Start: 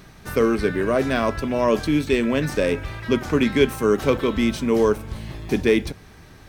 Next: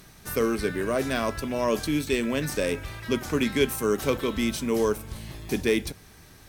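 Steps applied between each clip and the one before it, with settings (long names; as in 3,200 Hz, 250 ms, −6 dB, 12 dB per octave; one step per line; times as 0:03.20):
parametric band 13,000 Hz +12.5 dB 1.9 octaves
level −6 dB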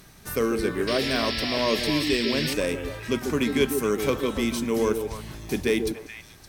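echo through a band-pass that steps 142 ms, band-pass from 320 Hz, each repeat 1.4 octaves, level −3.5 dB
sound drawn into the spectrogram noise, 0:00.87–0:02.54, 1,700–5,600 Hz −31 dBFS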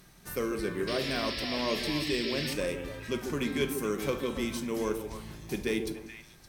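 rectangular room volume 820 cubic metres, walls furnished, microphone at 0.89 metres
level −7 dB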